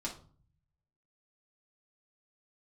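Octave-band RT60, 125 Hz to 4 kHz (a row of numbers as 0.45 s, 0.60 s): 1.2 s, 0.70 s, 0.45 s, 0.45 s, 0.30 s, 0.30 s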